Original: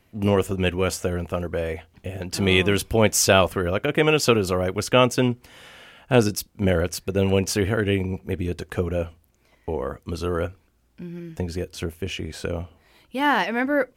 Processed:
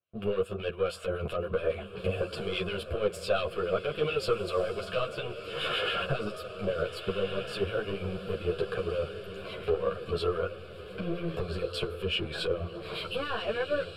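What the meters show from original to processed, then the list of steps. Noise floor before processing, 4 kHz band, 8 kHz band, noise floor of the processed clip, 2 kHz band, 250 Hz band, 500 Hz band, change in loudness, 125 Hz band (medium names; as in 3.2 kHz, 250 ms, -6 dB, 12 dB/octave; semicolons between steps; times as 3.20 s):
-62 dBFS, -6.5 dB, -23.5 dB, -44 dBFS, -9.5 dB, -14.0 dB, -6.5 dB, -9.5 dB, -12.0 dB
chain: recorder AGC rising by 68 dB/s; high-pass 140 Hz 12 dB/octave; gate with hold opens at -40 dBFS; treble shelf 10 kHz -8 dB; saturation -14 dBFS, distortion -11 dB; harmonic tremolo 7.2 Hz, crossover 1.7 kHz; distance through air 53 m; static phaser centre 1.3 kHz, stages 8; on a send: echo that smears into a reverb 1474 ms, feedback 52%, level -10 dB; on the sum: three-phase chorus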